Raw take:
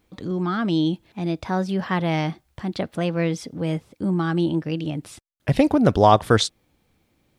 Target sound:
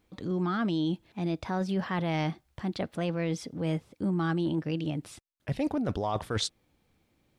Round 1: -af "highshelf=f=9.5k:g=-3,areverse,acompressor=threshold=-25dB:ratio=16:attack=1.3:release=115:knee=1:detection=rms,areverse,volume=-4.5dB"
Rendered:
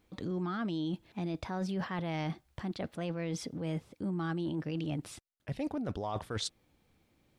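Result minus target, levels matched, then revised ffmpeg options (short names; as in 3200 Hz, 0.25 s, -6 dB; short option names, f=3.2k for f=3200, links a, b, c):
compressor: peak gain reduction +6 dB
-af "highshelf=f=9.5k:g=-3,areverse,acompressor=threshold=-18.5dB:ratio=16:attack=1.3:release=115:knee=1:detection=rms,areverse,volume=-4.5dB"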